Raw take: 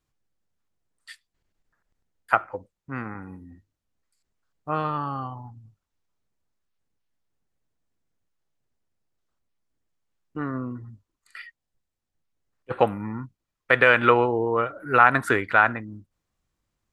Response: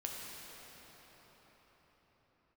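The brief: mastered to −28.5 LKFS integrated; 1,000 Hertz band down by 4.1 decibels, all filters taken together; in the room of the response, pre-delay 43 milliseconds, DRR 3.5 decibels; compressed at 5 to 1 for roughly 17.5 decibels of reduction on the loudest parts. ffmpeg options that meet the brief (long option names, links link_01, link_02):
-filter_complex "[0:a]equalizer=frequency=1000:width_type=o:gain=-6,acompressor=threshold=-34dB:ratio=5,asplit=2[link_01][link_02];[1:a]atrim=start_sample=2205,adelay=43[link_03];[link_02][link_03]afir=irnorm=-1:irlink=0,volume=-4.5dB[link_04];[link_01][link_04]amix=inputs=2:normalize=0,volume=10.5dB"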